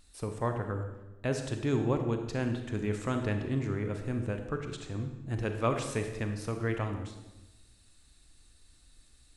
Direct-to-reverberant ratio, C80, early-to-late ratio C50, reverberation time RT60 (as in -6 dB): 5.5 dB, 9.0 dB, 7.0 dB, 1.1 s